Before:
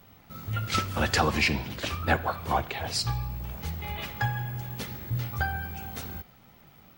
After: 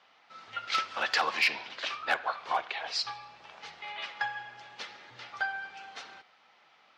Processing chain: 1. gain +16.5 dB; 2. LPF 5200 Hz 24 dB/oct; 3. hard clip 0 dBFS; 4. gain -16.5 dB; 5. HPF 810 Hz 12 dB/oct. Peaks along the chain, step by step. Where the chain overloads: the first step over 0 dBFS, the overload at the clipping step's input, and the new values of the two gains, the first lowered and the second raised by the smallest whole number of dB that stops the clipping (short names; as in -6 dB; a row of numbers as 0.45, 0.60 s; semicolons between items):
+6.0, +6.0, 0.0, -16.5, -13.5 dBFS; step 1, 6.0 dB; step 1 +10.5 dB, step 4 -10.5 dB